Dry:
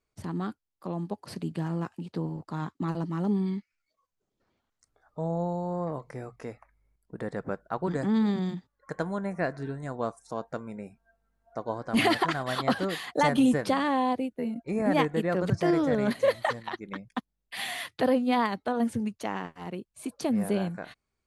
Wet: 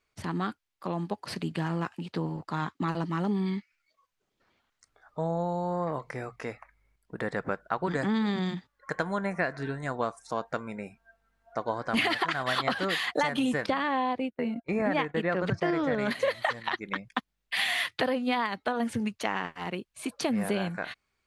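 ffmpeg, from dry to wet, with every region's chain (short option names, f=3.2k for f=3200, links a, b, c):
-filter_complex "[0:a]asettb=1/sr,asplit=3[a][b][c];[a]atrim=end=13.664[d];[b]atrim=start=13.66:end=15.99,asetpts=PTS-STARTPTS,afade=t=in:d=0.004:c=qsin,afade=t=out:st=2.326:d=0.004:c=qsin,aemphasis=mode=reproduction:type=50fm,agate=range=-16dB:threshold=-38dB:ratio=16:release=100:detection=peak[e];[c]atrim=start=15.986[f];[d][e]acrossfade=d=0.004:c1=hsin:c2=qsin[g];[g][f]acrossfade=d=0.004:c1=qsin:c2=hsin,equalizer=f=2.3k:t=o:w=2.8:g=10,acompressor=threshold=-24dB:ratio=6"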